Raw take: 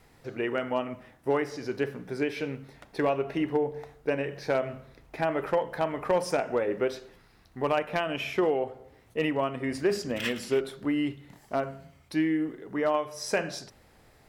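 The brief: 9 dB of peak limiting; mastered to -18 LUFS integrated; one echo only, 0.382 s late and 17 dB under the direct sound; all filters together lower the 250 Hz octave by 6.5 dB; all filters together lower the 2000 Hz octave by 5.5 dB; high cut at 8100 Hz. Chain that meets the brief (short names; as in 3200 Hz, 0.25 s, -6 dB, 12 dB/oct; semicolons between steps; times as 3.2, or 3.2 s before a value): LPF 8100 Hz; bell 250 Hz -9 dB; bell 2000 Hz -7 dB; limiter -26 dBFS; echo 0.382 s -17 dB; gain +19 dB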